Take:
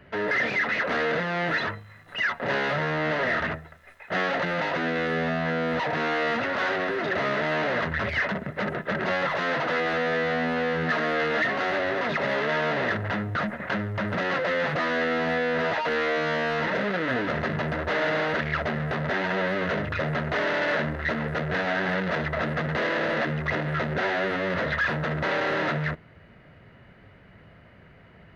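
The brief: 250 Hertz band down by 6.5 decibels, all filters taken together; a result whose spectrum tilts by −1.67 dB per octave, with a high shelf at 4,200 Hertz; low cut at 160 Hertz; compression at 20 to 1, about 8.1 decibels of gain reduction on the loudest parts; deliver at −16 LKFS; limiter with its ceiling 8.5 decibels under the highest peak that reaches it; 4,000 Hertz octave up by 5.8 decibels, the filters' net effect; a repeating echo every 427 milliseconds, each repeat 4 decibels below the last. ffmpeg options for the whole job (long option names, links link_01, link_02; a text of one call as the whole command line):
ffmpeg -i in.wav -af "highpass=160,equalizer=frequency=250:width_type=o:gain=-7.5,equalizer=frequency=4000:width_type=o:gain=5.5,highshelf=frequency=4200:gain=4,acompressor=threshold=-28dB:ratio=20,alimiter=level_in=1dB:limit=-24dB:level=0:latency=1,volume=-1dB,aecho=1:1:427|854|1281|1708|2135|2562|2989|3416|3843:0.631|0.398|0.25|0.158|0.0994|0.0626|0.0394|0.0249|0.0157,volume=16dB" out.wav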